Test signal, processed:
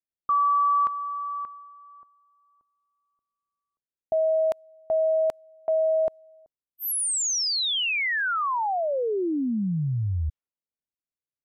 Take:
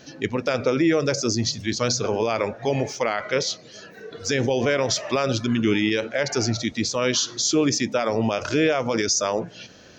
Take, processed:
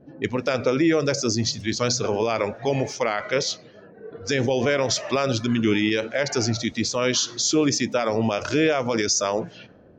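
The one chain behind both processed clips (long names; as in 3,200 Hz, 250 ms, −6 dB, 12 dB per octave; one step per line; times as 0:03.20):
low-pass that shuts in the quiet parts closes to 440 Hz, open at −23 dBFS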